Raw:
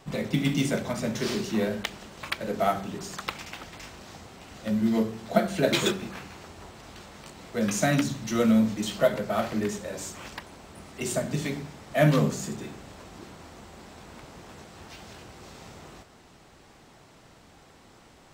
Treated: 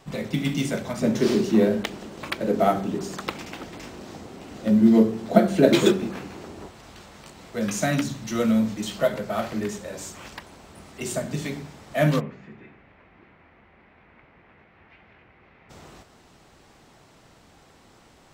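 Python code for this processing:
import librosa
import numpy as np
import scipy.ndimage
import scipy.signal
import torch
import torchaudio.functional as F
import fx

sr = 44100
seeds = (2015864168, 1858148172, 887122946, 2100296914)

y = fx.peak_eq(x, sr, hz=310.0, db=10.5, octaves=2.0, at=(1.01, 6.68))
y = fx.ladder_lowpass(y, sr, hz=2500.0, resonance_pct=55, at=(12.19, 15.69), fade=0.02)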